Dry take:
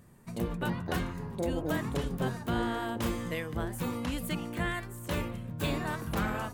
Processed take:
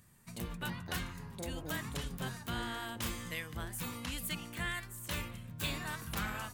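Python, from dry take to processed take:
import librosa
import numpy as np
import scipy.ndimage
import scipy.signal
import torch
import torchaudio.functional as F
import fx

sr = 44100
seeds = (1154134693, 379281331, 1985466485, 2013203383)

y = fx.tone_stack(x, sr, knobs='5-5-5')
y = F.gain(torch.from_numpy(y), 8.0).numpy()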